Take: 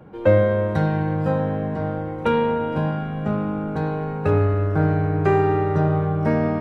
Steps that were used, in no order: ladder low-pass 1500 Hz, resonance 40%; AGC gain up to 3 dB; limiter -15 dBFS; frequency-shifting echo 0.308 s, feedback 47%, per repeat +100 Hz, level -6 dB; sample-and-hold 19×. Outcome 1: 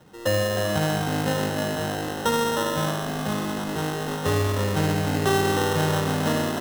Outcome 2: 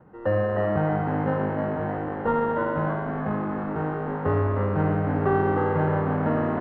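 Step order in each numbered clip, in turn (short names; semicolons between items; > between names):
ladder low-pass > limiter > AGC > frequency-shifting echo > sample-and-hold; sample-and-hold > ladder low-pass > limiter > frequency-shifting echo > AGC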